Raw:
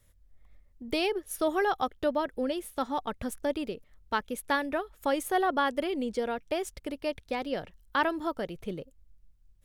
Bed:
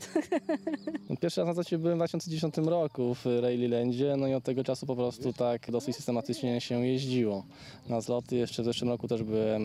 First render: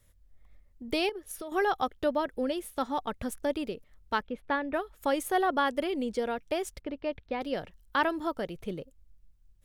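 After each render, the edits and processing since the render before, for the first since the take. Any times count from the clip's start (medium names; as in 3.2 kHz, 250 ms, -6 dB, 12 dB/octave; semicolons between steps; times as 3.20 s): 1.09–1.52 s: compression 12:1, threshold -35 dBFS; 4.22–4.74 s: distance through air 340 m; 6.81–7.41 s: distance through air 260 m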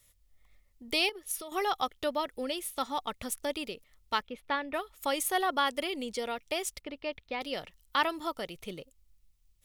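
tilt shelf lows -7 dB, about 1.1 kHz; band-stop 1.6 kHz, Q 5.7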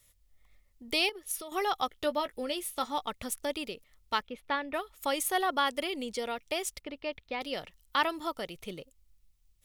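1.90–3.08 s: doubling 17 ms -11 dB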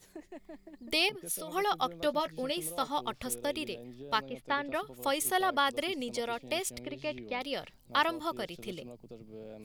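add bed -18 dB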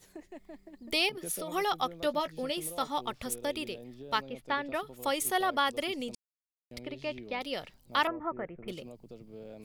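1.17–1.73 s: three bands compressed up and down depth 40%; 6.15–6.71 s: mute; 8.07–8.68 s: steep low-pass 2.1 kHz 48 dB/octave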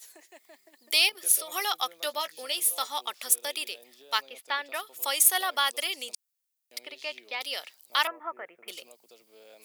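high-pass 450 Hz 12 dB/octave; tilt EQ +4 dB/octave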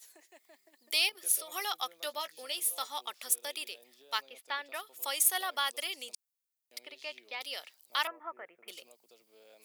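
trim -6 dB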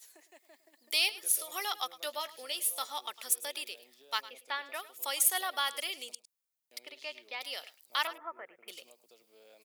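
delay 105 ms -17 dB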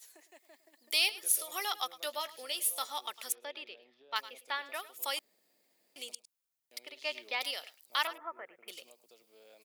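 3.32–4.16 s: distance through air 290 m; 5.19–5.96 s: room tone; 7.05–7.51 s: gain +5.5 dB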